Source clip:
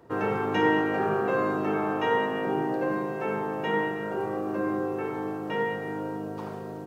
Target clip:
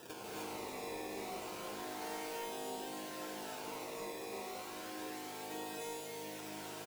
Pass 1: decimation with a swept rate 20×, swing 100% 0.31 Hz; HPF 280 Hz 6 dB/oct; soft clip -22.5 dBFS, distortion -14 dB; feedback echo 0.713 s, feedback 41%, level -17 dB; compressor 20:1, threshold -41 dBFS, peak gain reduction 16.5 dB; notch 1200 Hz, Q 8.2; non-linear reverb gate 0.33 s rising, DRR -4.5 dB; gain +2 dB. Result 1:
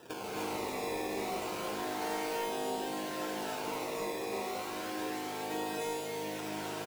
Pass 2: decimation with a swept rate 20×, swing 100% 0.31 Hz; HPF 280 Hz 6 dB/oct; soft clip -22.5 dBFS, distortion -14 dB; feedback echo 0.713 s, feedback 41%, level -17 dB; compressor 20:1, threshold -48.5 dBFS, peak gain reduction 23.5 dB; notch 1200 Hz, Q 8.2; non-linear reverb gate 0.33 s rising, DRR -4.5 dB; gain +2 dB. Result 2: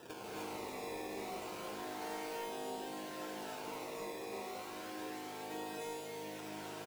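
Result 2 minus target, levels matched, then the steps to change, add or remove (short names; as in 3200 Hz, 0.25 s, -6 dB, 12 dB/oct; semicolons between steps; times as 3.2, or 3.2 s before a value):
8000 Hz band -3.0 dB
add after HPF: high shelf 4300 Hz +7.5 dB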